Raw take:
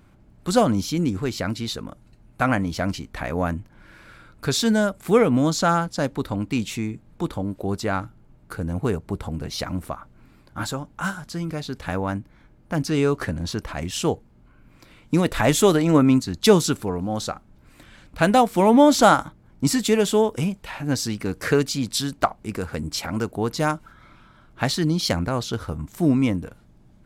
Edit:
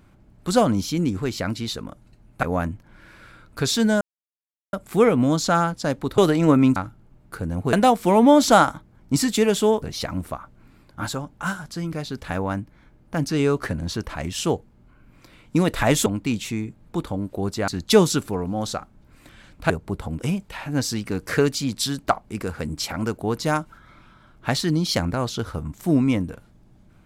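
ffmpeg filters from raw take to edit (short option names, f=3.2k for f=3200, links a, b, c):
-filter_complex "[0:a]asplit=11[a][b][c][d][e][f][g][h][i][j][k];[a]atrim=end=2.432[l];[b]atrim=start=3.288:end=4.87,asetpts=PTS-STARTPTS,afade=t=out:st=1.578:d=0.004:c=hsin,apad=pad_dur=0.72[m];[c]atrim=start=4.87:end=6.322,asetpts=PTS-STARTPTS,afade=t=in:d=0.004:c=hsin[n];[d]atrim=start=15.638:end=16.222[o];[e]atrim=start=7.938:end=8.912[p];[f]atrim=start=18.238:end=20.332[q];[g]atrim=start=9.398:end=15.642[r];[h]atrim=start=6.318:end=7.942[s];[i]atrim=start=16.218:end=18.242[t];[j]atrim=start=8.908:end=9.402[u];[k]atrim=start=20.328[v];[m][n]concat=n=2:v=0:a=1[w];[l][w]acrossfade=d=0.004:c1=hsin:c2=hsin[x];[x][o]acrossfade=d=0.004:c1=hsin:c2=hsin[y];[y][p]acrossfade=d=0.004:c1=hsin:c2=hsin[z];[z][q]acrossfade=d=0.004:c1=hsin:c2=hsin[aa];[aa][r]acrossfade=d=0.004:c1=hsin:c2=hsin[ab];[ab][s]acrossfade=d=0.004:c1=hsin:c2=hsin[ac];[ac][t]acrossfade=d=0.004:c1=hsin:c2=hsin[ad];[ad][u]acrossfade=d=0.004:c1=hsin:c2=hsin[ae];[ae][v]acrossfade=d=0.004:c1=hsin:c2=hsin"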